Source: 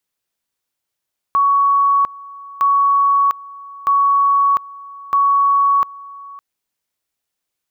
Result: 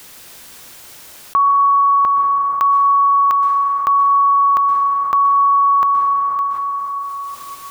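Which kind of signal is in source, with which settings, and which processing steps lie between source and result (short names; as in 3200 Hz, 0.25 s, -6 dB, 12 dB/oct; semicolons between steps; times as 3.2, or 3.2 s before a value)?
two-level tone 1120 Hz -10.5 dBFS, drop 21.5 dB, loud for 0.70 s, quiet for 0.56 s, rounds 4
plate-style reverb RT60 1.8 s, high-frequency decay 0.55×, pre-delay 0.11 s, DRR 6 dB; fast leveller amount 70%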